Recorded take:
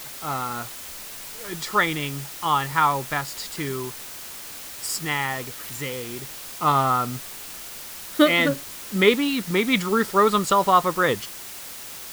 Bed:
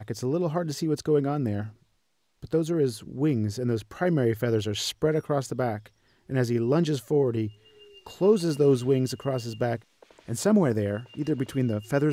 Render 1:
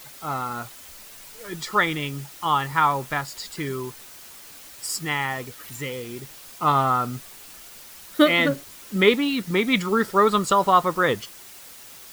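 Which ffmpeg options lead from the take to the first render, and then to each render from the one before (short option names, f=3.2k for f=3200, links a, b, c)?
-af "afftdn=nr=7:nf=-38"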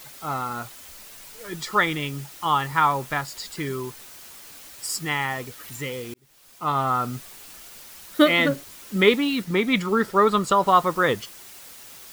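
-filter_complex "[0:a]asettb=1/sr,asplit=3[a][b][c];[a]atrim=end=9.444[d];[b]atrim=start=9.44:end=10.67,asetpts=PTS-STARTPTS,afade=t=in:d=0.004:c=qsin,afade=t=out:st=1.226:d=0.004:c=qsin,highshelf=f=3.9k:g=-4.5[e];[c]atrim=start=10.666[f];[d][e]acrossfade=d=0.004:c1=hsin:c2=qsin[g];[g][f]acrossfade=d=0.004:c1=qsin:c2=hsin,asplit=2[h][i];[h]atrim=end=6.14,asetpts=PTS-STARTPTS,afade=t=out:st=6.136:d=0.004:c=hsin[j];[i]atrim=start=6.14,asetpts=PTS-STARTPTS,afade=t=in:d=0.95[k];[j][k]concat=n=2:v=0:a=1"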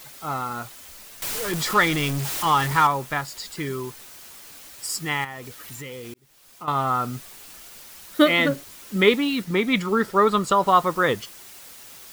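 -filter_complex "[0:a]asettb=1/sr,asplit=3[a][b][c];[a]atrim=end=1.224[d];[b]atrim=start=1.22:end=2.87,asetpts=PTS-STARTPTS,afade=t=in:d=0.004:c=qsin,afade=t=out:st=1.646:d=0.004:c=qsin,aeval=exprs='val(0)+0.5*0.0631*sgn(val(0))':c=same[e];[c]atrim=start=2.866[f];[d][e]acrossfade=d=0.004:c1=hsin:c2=qsin[g];[g][f]acrossfade=d=0.004:c1=qsin:c2=hsin,asettb=1/sr,asplit=3[h][i][j];[h]atrim=end=5.244[k];[i]atrim=start=5.24:end=6.68,asetpts=PTS-STARTPTS,afade=t=in:d=0.004:c=qsin,afade=t=out:st=1.436:d=0.004:c=qsin,acompressor=threshold=-33dB:ratio=4:attack=3.2:release=140:knee=1:detection=peak[l];[j]atrim=start=6.676[m];[k][l]acrossfade=d=0.004:c1=hsin:c2=qsin[n];[n][m]acrossfade=d=0.004:c1=qsin:c2=hsin"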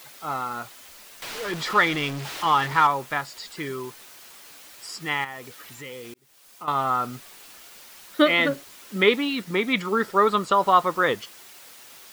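-filter_complex "[0:a]acrossover=split=5000[a][b];[b]acompressor=threshold=-44dB:ratio=4:attack=1:release=60[c];[a][c]amix=inputs=2:normalize=0,lowshelf=f=170:g=-11.5"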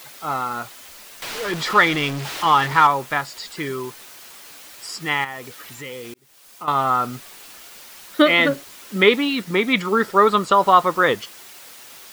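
-af "volume=4.5dB,alimiter=limit=-2dB:level=0:latency=1"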